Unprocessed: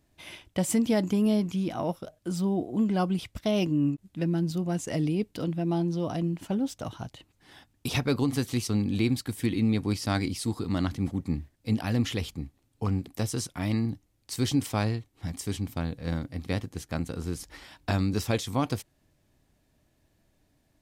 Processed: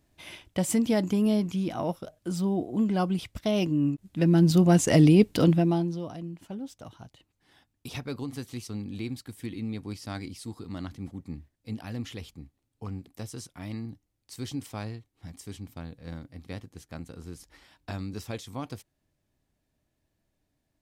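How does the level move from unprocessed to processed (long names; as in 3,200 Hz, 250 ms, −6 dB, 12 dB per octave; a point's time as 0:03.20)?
0:03.90 0 dB
0:04.55 +10 dB
0:05.53 +10 dB
0:05.70 +3 dB
0:06.16 −9 dB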